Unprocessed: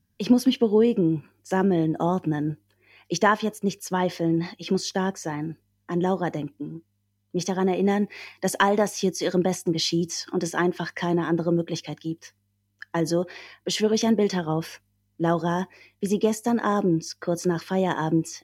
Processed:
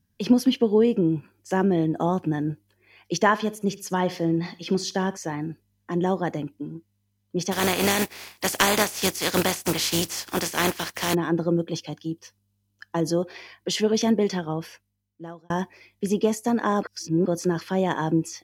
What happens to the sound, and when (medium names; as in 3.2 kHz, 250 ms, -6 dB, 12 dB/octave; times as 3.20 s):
3.17–5.17 s: feedback delay 65 ms, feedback 32%, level -18 dB
7.51–11.13 s: spectral contrast reduction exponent 0.39
11.63–13.34 s: peaking EQ 2 kHz -8 dB 0.44 oct
14.12–15.50 s: fade out
16.83–17.26 s: reverse